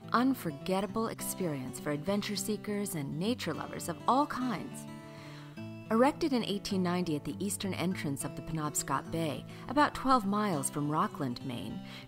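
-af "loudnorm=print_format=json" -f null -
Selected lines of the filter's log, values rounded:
"input_i" : "-32.7",
"input_tp" : "-13.0",
"input_lra" : "2.5",
"input_thresh" : "-43.0",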